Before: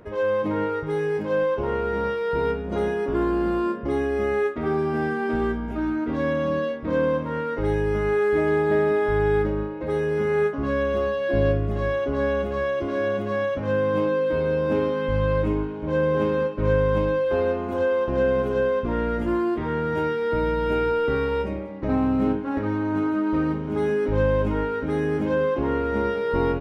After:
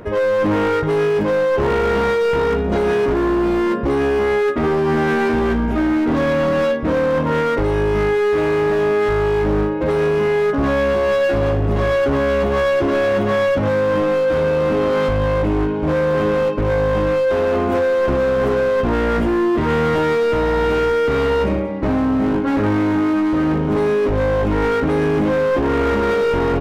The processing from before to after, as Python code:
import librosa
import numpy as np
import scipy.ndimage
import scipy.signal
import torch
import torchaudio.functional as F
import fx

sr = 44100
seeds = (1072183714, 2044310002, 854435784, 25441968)

p1 = fx.over_compress(x, sr, threshold_db=-25.0, ratio=-0.5)
p2 = x + (p1 * librosa.db_to_amplitude(1.0))
p3 = np.clip(p2, -10.0 ** (-17.5 / 20.0), 10.0 ** (-17.5 / 20.0))
y = p3 * librosa.db_to_amplitude(3.5)